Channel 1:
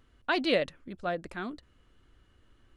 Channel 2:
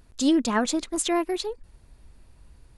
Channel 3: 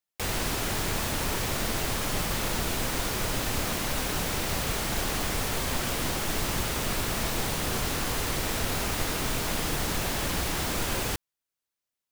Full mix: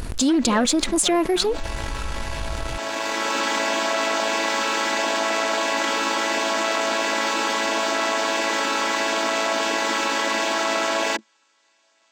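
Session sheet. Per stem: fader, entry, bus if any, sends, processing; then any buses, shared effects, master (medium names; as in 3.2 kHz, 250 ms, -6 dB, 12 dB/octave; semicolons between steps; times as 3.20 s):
-12.5 dB, 0.00 s, no send, none
-1.5 dB, 0.00 s, no send, none
-1.0 dB, 0.00 s, no send, vocoder on a held chord major triad, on A3; high-pass 710 Hz 12 dB/octave; auto duck -18 dB, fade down 0.35 s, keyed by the second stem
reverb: none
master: waveshaping leveller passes 1; level flattener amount 70%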